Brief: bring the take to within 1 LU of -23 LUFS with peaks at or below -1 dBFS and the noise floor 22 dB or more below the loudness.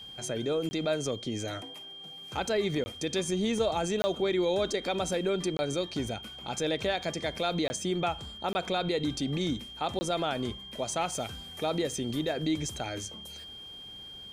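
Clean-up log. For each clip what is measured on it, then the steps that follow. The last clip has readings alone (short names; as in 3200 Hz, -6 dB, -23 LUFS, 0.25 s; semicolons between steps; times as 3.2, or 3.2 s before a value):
dropouts 7; longest dropout 20 ms; steady tone 3200 Hz; tone level -43 dBFS; loudness -31.5 LUFS; peak -17.0 dBFS; loudness target -23.0 LUFS
-> interpolate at 0.69/2.84/4.02/5.57/7.68/8.53/9.99, 20 ms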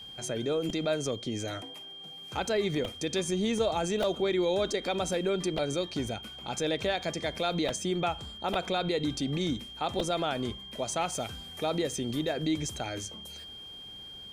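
dropouts 0; steady tone 3200 Hz; tone level -43 dBFS
-> notch 3200 Hz, Q 30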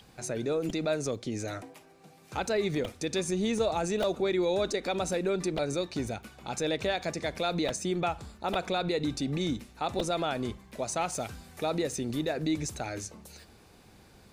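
steady tone none; loudness -31.5 LUFS; peak -16.5 dBFS; loudness target -23.0 LUFS
-> gain +8.5 dB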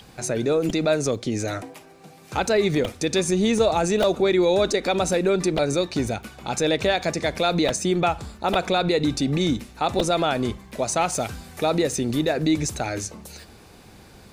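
loudness -23.0 LUFS; peak -8.0 dBFS; noise floor -48 dBFS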